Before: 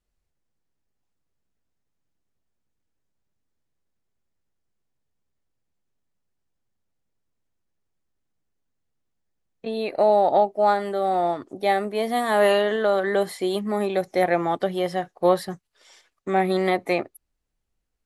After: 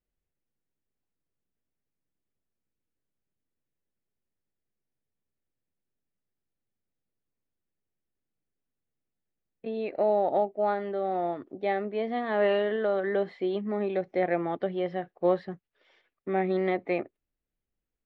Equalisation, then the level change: Bessel low-pass 1.9 kHz, order 4; bass shelf 180 Hz -9.5 dB; peaking EQ 1 kHz -9.5 dB 1.6 oct; 0.0 dB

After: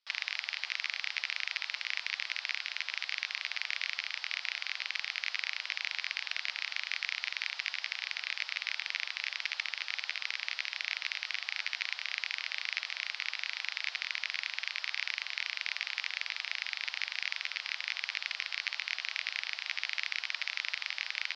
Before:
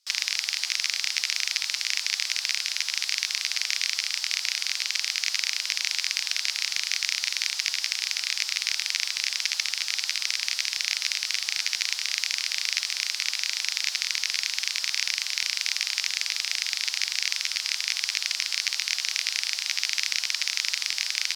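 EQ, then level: band-pass 340–7500 Hz; distance through air 340 m; 0.0 dB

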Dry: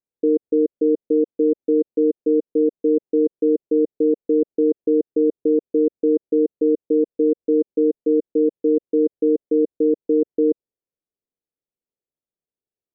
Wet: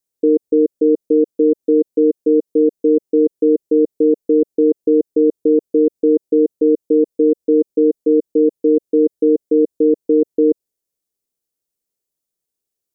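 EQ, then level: tone controls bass -8 dB, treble +13 dB; bass shelf 240 Hz +11.5 dB; +2.5 dB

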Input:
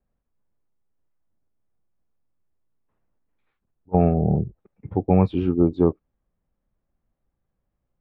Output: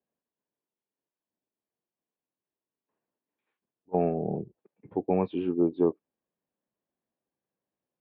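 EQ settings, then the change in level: cabinet simulation 310–3300 Hz, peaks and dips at 550 Hz -3 dB, 780 Hz -4 dB, 1.3 kHz -9 dB, 2.1 kHz -5 dB; -2.0 dB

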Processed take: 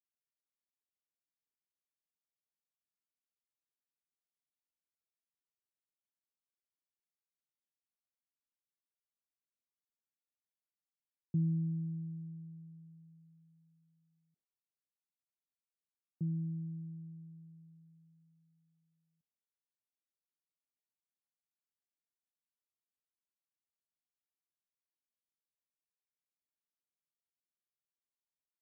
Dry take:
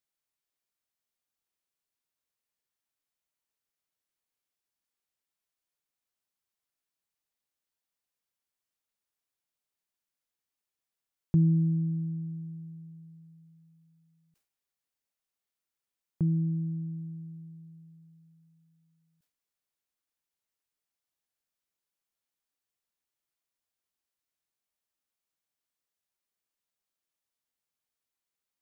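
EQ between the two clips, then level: ladder band-pass 210 Hz, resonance 20%; +1.0 dB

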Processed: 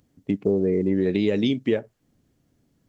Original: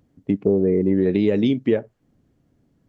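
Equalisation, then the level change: treble shelf 2.6 kHz +10.5 dB; -3.5 dB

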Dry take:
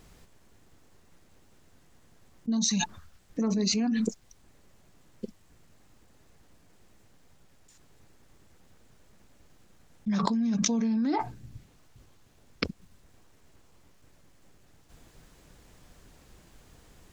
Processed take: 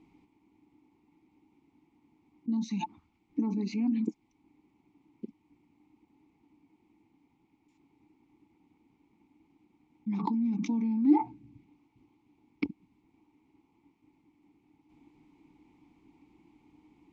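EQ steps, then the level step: vowel filter u; bass shelf 290 Hz +7 dB; +6.0 dB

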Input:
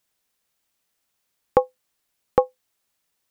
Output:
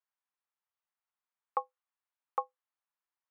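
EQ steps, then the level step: dynamic bell 1.2 kHz, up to +8 dB, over -41 dBFS, Q 3.4; ladder band-pass 1.2 kHz, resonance 35%; -3.0 dB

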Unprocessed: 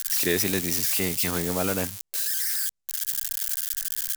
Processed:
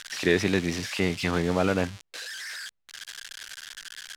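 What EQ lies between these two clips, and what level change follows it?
low-pass 3.3 kHz 12 dB/octave; +3.0 dB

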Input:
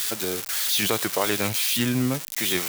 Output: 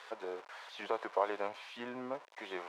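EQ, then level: ladder band-pass 750 Hz, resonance 30%; peaking EQ 980 Hz +6.5 dB 0.23 oct; +3.0 dB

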